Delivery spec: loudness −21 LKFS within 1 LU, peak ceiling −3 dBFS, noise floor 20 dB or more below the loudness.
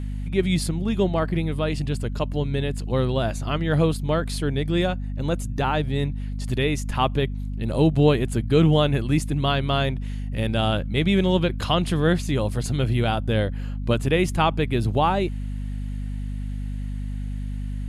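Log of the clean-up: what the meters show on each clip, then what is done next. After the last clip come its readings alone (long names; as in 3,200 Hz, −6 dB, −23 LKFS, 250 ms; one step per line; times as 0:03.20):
mains hum 50 Hz; hum harmonics up to 250 Hz; level of the hum −26 dBFS; integrated loudness −24.0 LKFS; sample peak −5.0 dBFS; target loudness −21.0 LKFS
→ mains-hum notches 50/100/150/200/250 Hz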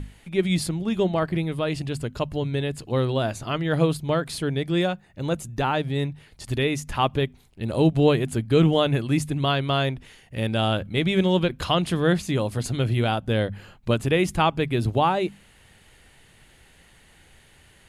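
mains hum none found; integrated loudness −24.0 LKFS; sample peak −7.0 dBFS; target loudness −21.0 LKFS
→ level +3 dB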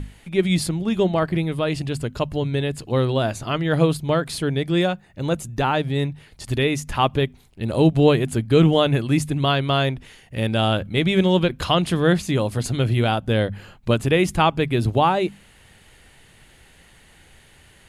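integrated loudness −21.0 LKFS; sample peak −4.0 dBFS; background noise floor −52 dBFS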